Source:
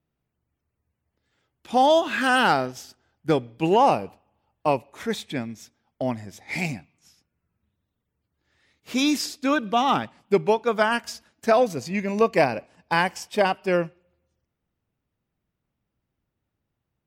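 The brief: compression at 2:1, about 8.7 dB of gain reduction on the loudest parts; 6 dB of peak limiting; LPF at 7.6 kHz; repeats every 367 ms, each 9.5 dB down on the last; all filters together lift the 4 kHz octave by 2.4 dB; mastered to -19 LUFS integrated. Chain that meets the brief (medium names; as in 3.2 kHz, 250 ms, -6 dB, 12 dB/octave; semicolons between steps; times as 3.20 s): low-pass 7.6 kHz; peaking EQ 4 kHz +3.5 dB; compression 2:1, threshold -30 dBFS; peak limiter -20 dBFS; feedback delay 367 ms, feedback 33%, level -9.5 dB; trim +13 dB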